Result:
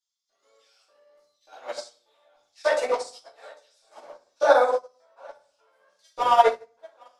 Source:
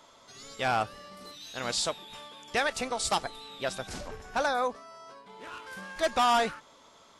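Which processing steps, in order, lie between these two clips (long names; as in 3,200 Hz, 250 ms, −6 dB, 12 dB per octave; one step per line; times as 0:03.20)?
parametric band 890 Hz +8 dB 1.9 octaves
feedback echo with a high-pass in the loop 802 ms, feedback 52%, high-pass 420 Hz, level −13 dB
auto-filter high-pass square 1.7 Hz 490–5,200 Hz
output level in coarse steps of 11 dB
rectangular room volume 120 cubic metres, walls mixed, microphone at 2.5 metres
expander for the loud parts 2.5 to 1, over −29 dBFS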